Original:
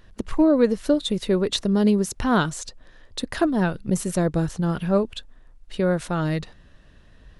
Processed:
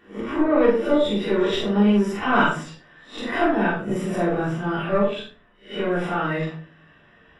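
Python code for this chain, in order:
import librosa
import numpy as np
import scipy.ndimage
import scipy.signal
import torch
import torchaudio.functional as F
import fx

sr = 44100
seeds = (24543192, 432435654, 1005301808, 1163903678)

y = fx.spec_swells(x, sr, rise_s=0.34)
y = fx.highpass(y, sr, hz=710.0, slope=6)
y = fx.tube_stage(y, sr, drive_db=17.0, bias=0.3)
y = scipy.signal.savgol_filter(y, 25, 4, mode='constant')
y = fx.doubler(y, sr, ms=44.0, db=-4)
y = fx.room_shoebox(y, sr, seeds[0], volume_m3=310.0, walls='furnished', distance_m=3.5)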